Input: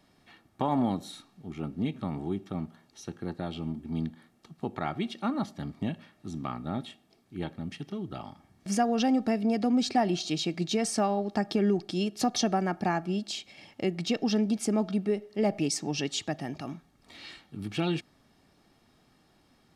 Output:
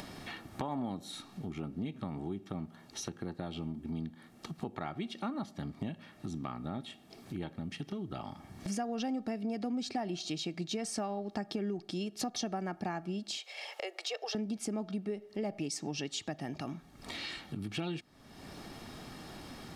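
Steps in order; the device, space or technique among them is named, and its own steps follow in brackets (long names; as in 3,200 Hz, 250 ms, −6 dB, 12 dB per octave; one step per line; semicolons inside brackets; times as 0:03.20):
0:13.37–0:14.35: Butterworth high-pass 450 Hz 48 dB per octave
upward and downward compression (upward compression, threshold −32 dBFS; downward compressor 3 to 1, threshold −36 dBFS, peak gain reduction 12 dB)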